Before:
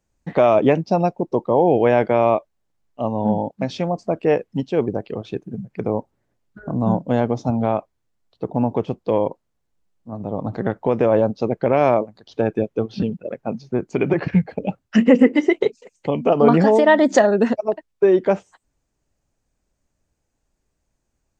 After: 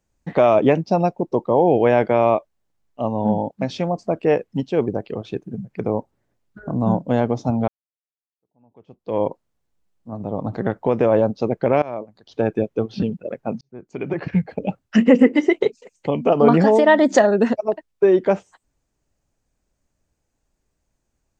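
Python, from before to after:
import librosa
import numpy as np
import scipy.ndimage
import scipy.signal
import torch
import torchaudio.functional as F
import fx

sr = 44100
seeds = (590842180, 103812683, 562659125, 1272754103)

y = fx.edit(x, sr, fx.fade_in_span(start_s=7.68, length_s=1.53, curve='exp'),
    fx.fade_in_from(start_s=11.82, length_s=0.63, floor_db=-22.5),
    fx.fade_in_span(start_s=13.61, length_s=1.02), tone=tone)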